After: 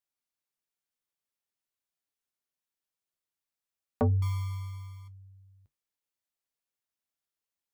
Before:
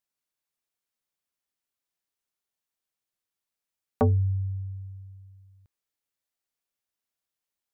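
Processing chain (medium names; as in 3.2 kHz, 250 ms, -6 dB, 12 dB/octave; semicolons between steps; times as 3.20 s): 4.22–5.08 s: sample-rate reducer 1.1 kHz, jitter 0%; flange 0.46 Hz, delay 6.9 ms, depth 4.7 ms, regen -58%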